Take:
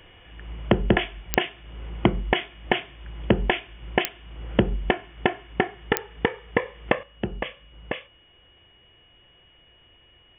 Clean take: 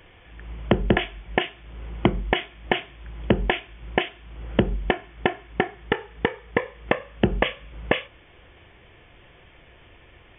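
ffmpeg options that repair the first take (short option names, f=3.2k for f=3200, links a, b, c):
-af "adeclick=t=4,bandreject=f=2.9k:w=30,asetnsamples=n=441:p=0,asendcmd='7.03 volume volume 8.5dB',volume=0dB"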